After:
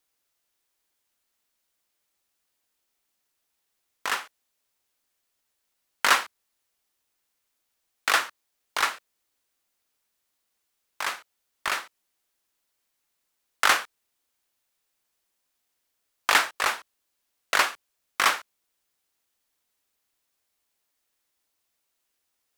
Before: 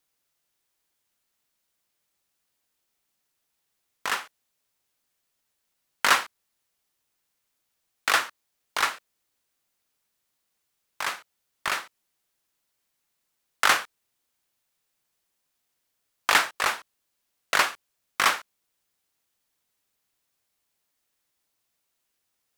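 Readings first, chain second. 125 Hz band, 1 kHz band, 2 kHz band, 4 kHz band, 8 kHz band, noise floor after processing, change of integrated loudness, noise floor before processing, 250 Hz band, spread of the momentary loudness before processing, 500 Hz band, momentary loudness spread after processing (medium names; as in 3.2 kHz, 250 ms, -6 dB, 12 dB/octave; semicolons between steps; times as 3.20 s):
no reading, 0.0 dB, 0.0 dB, 0.0 dB, 0.0 dB, -78 dBFS, 0.0 dB, -78 dBFS, -1.0 dB, 15 LU, 0.0 dB, 15 LU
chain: peaking EQ 140 Hz -8 dB 0.77 oct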